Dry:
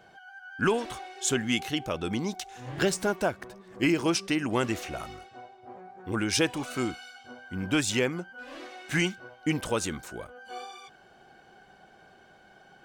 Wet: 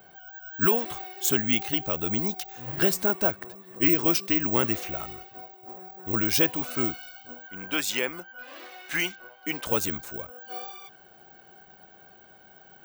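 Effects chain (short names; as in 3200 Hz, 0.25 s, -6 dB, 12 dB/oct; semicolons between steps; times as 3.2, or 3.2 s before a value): careless resampling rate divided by 2×, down none, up zero stuff; 7.47–9.67 weighting filter A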